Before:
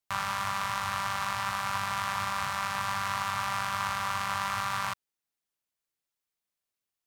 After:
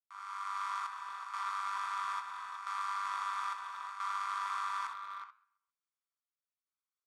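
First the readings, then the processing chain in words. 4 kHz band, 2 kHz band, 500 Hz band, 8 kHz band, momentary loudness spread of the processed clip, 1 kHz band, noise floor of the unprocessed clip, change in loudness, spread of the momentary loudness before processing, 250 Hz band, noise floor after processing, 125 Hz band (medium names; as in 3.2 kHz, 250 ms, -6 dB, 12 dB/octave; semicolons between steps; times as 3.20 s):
-13.0 dB, -11.0 dB, under -20 dB, -14.0 dB, 7 LU, -5.5 dB, under -85 dBFS, -7.0 dB, 1 LU, under -30 dB, under -85 dBFS, under -35 dB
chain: fade-in on the opening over 0.68 s; low-pass 10 kHz 24 dB/octave; feedback delay 133 ms, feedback 38%, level -21.5 dB; square tremolo 0.75 Hz, depth 65%, duty 65%; inverse Chebyshev high-pass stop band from 240 Hz, stop band 70 dB; resonant high shelf 1.8 kHz -7 dB, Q 1.5; comb 0.9 ms, depth 50%; speakerphone echo 370 ms, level -8 dB; flange 0.91 Hz, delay 8.1 ms, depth 3.1 ms, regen -88%; saturation -27.5 dBFS, distortion -19 dB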